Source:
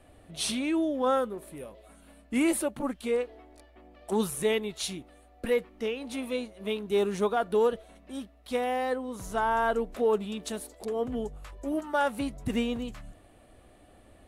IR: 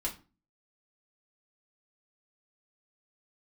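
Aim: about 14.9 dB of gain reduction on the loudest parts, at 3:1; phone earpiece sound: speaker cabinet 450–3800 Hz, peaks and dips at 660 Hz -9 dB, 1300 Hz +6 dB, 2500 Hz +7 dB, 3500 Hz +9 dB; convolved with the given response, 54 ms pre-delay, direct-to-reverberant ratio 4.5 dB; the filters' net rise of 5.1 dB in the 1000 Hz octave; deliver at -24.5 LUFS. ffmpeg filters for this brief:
-filter_complex "[0:a]equalizer=f=1k:t=o:g=6.5,acompressor=threshold=-40dB:ratio=3,asplit=2[a][b];[1:a]atrim=start_sample=2205,adelay=54[c];[b][c]afir=irnorm=-1:irlink=0,volume=-7dB[d];[a][d]amix=inputs=2:normalize=0,highpass=450,equalizer=f=660:t=q:w=4:g=-9,equalizer=f=1.3k:t=q:w=4:g=6,equalizer=f=2.5k:t=q:w=4:g=7,equalizer=f=3.5k:t=q:w=4:g=9,lowpass=f=3.8k:w=0.5412,lowpass=f=3.8k:w=1.3066,volume=16.5dB"

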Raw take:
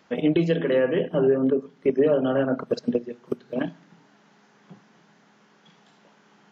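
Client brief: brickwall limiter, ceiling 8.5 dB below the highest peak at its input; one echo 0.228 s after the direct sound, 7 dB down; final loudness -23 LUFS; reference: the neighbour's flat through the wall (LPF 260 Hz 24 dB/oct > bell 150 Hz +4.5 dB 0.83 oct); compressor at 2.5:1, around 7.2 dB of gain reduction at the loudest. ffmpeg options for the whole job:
-af "acompressor=threshold=-27dB:ratio=2.5,alimiter=limit=-23.5dB:level=0:latency=1,lowpass=f=260:w=0.5412,lowpass=f=260:w=1.3066,equalizer=f=150:t=o:w=0.83:g=4.5,aecho=1:1:228:0.447,volume=14.5dB"

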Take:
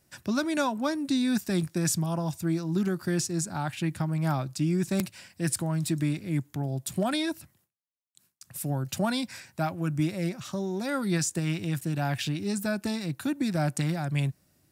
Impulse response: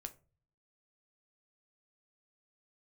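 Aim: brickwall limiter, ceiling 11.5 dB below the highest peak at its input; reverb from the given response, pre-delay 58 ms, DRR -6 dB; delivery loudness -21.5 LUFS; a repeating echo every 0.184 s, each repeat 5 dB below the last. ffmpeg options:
-filter_complex "[0:a]alimiter=limit=-21.5dB:level=0:latency=1,aecho=1:1:184|368|552|736|920|1104|1288:0.562|0.315|0.176|0.0988|0.0553|0.031|0.0173,asplit=2[a][b];[1:a]atrim=start_sample=2205,adelay=58[c];[b][c]afir=irnorm=-1:irlink=0,volume=10dB[d];[a][d]amix=inputs=2:normalize=0,volume=1.5dB"

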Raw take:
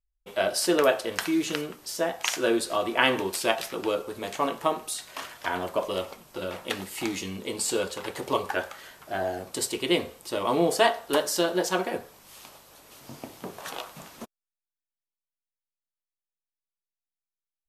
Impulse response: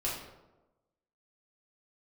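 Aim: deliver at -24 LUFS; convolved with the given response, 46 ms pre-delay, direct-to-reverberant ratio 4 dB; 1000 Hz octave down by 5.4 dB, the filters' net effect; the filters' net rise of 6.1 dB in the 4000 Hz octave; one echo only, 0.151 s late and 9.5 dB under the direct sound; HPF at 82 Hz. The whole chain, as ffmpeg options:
-filter_complex "[0:a]highpass=82,equalizer=f=1k:t=o:g=-8,equalizer=f=4k:t=o:g=9,aecho=1:1:151:0.335,asplit=2[a][b];[1:a]atrim=start_sample=2205,adelay=46[c];[b][c]afir=irnorm=-1:irlink=0,volume=-9dB[d];[a][d]amix=inputs=2:normalize=0,volume=1dB"

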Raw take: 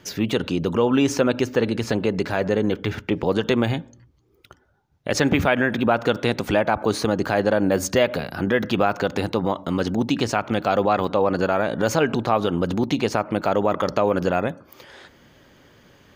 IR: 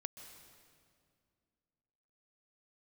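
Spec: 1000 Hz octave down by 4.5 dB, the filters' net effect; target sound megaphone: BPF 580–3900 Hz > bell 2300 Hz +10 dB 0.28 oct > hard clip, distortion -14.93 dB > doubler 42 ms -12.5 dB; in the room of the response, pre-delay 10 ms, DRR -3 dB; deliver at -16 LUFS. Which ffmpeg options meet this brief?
-filter_complex "[0:a]equalizer=f=1k:t=o:g=-5.5,asplit=2[a][b];[1:a]atrim=start_sample=2205,adelay=10[c];[b][c]afir=irnorm=-1:irlink=0,volume=6dB[d];[a][d]amix=inputs=2:normalize=0,highpass=580,lowpass=3.9k,equalizer=f=2.3k:t=o:w=0.28:g=10,asoftclip=type=hard:threshold=-13dB,asplit=2[e][f];[f]adelay=42,volume=-12.5dB[g];[e][g]amix=inputs=2:normalize=0,volume=6.5dB"

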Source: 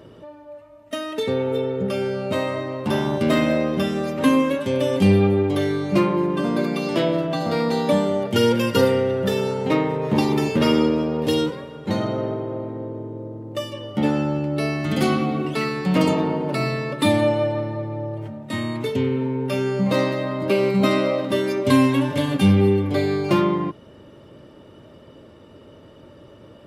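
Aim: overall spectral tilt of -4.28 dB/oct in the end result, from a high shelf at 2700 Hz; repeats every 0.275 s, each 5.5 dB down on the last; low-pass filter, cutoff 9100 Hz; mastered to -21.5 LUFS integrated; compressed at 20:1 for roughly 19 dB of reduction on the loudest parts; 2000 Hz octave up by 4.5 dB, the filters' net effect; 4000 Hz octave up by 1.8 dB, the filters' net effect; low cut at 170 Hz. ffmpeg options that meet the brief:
-af "highpass=170,lowpass=9.1k,equalizer=f=2k:t=o:g=7,highshelf=f=2.7k:g=-5.5,equalizer=f=4k:t=o:g=4,acompressor=threshold=-32dB:ratio=20,aecho=1:1:275|550|825|1100|1375|1650|1925:0.531|0.281|0.149|0.079|0.0419|0.0222|0.0118,volume=13.5dB"

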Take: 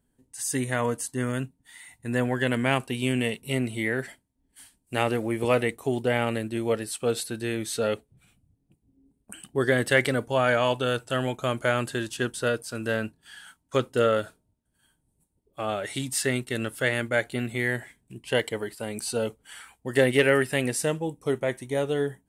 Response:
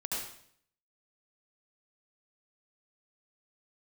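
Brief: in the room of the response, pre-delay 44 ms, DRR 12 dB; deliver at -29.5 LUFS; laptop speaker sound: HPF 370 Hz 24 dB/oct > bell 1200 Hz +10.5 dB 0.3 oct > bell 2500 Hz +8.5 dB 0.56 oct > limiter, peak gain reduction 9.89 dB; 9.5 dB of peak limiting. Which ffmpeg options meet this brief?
-filter_complex "[0:a]alimiter=limit=-16dB:level=0:latency=1,asplit=2[a][b];[1:a]atrim=start_sample=2205,adelay=44[c];[b][c]afir=irnorm=-1:irlink=0,volume=-15.5dB[d];[a][d]amix=inputs=2:normalize=0,highpass=f=370:w=0.5412,highpass=f=370:w=1.3066,equalizer=f=1.2k:t=o:w=0.3:g=10.5,equalizer=f=2.5k:t=o:w=0.56:g=8.5,volume=2dB,alimiter=limit=-18.5dB:level=0:latency=1"

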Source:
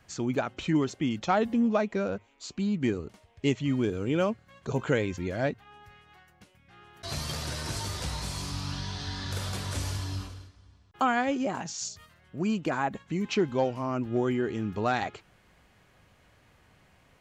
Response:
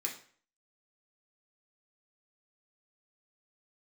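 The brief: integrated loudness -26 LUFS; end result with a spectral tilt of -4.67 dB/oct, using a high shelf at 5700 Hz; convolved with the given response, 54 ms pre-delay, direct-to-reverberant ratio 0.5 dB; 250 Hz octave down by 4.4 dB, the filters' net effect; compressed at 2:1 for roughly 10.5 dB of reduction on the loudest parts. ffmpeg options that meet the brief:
-filter_complex "[0:a]equalizer=f=250:t=o:g=-5.5,highshelf=f=5.7k:g=-5.5,acompressor=threshold=-42dB:ratio=2,asplit=2[a][b];[1:a]atrim=start_sample=2205,adelay=54[c];[b][c]afir=irnorm=-1:irlink=0,volume=-2dB[d];[a][d]amix=inputs=2:normalize=0,volume=12.5dB"

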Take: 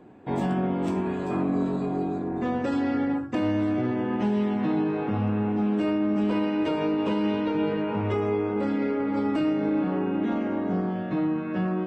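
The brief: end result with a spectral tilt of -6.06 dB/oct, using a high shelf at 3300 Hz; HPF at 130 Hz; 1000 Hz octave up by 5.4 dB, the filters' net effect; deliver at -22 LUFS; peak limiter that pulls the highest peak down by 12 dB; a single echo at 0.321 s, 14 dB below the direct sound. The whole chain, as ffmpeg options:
-af "highpass=130,equalizer=f=1k:t=o:g=6.5,highshelf=f=3.3k:g=4.5,alimiter=level_in=1.5dB:limit=-24dB:level=0:latency=1,volume=-1.5dB,aecho=1:1:321:0.2,volume=11dB"

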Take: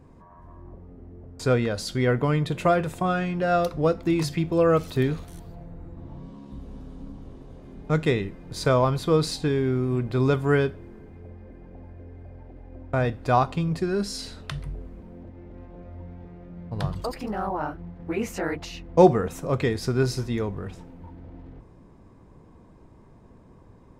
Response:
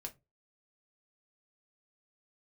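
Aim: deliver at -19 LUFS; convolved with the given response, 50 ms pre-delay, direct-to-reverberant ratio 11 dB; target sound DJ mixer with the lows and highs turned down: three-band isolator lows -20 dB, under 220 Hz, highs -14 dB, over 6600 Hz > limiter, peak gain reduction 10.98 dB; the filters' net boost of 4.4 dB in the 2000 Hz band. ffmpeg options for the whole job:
-filter_complex "[0:a]equalizer=f=2k:t=o:g=6,asplit=2[a][b];[1:a]atrim=start_sample=2205,adelay=50[c];[b][c]afir=irnorm=-1:irlink=0,volume=-7.5dB[d];[a][d]amix=inputs=2:normalize=0,acrossover=split=220 6600:gain=0.1 1 0.2[e][f][g];[e][f][g]amix=inputs=3:normalize=0,volume=8.5dB,alimiter=limit=-6dB:level=0:latency=1"

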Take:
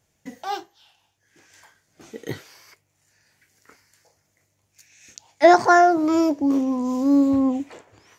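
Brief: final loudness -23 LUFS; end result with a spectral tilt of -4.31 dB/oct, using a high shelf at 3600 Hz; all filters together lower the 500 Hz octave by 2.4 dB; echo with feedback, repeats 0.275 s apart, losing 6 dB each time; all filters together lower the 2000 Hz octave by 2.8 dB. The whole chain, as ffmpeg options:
-af "equalizer=f=500:t=o:g=-4,equalizer=f=2k:t=o:g=-4.5,highshelf=f=3.6k:g=4.5,aecho=1:1:275|550|825|1100|1375|1650:0.501|0.251|0.125|0.0626|0.0313|0.0157,volume=-3.5dB"

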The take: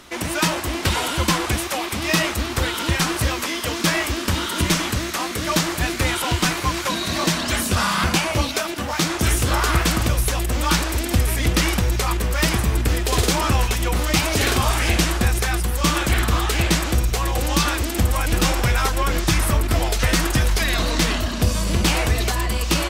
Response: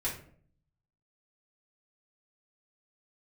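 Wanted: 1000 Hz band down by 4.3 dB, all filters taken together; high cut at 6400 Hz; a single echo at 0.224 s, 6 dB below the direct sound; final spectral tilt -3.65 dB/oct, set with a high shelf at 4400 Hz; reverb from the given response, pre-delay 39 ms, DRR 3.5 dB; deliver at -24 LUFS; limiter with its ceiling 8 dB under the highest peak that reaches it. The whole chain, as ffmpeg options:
-filter_complex "[0:a]lowpass=6.4k,equalizer=f=1k:t=o:g=-6,highshelf=f=4.4k:g=7.5,alimiter=limit=-13.5dB:level=0:latency=1,aecho=1:1:224:0.501,asplit=2[a][b];[1:a]atrim=start_sample=2205,adelay=39[c];[b][c]afir=irnorm=-1:irlink=0,volume=-8dB[d];[a][d]amix=inputs=2:normalize=0,volume=-3.5dB"

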